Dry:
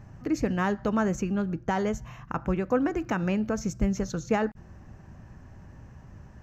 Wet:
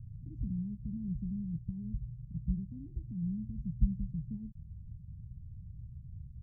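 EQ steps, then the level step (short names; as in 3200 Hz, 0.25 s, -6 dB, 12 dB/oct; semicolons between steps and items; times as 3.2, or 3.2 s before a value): inverse Chebyshev low-pass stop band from 500 Hz, stop band 60 dB; +2.0 dB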